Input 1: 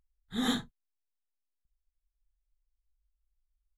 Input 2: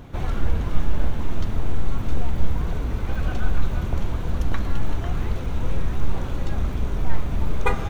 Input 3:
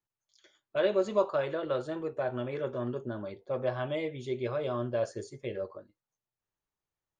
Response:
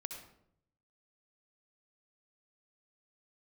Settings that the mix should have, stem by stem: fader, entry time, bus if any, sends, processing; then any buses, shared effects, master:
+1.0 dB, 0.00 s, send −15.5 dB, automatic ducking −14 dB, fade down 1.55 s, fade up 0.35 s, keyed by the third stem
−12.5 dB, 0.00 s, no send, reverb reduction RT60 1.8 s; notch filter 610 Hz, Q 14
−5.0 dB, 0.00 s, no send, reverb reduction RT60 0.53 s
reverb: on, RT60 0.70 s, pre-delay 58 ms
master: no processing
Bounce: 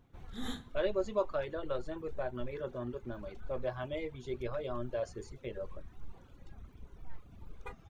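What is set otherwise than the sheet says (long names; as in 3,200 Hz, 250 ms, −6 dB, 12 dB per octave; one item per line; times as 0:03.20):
stem 1 +1.0 dB → −8.5 dB
stem 2 −12.5 dB → −23.5 dB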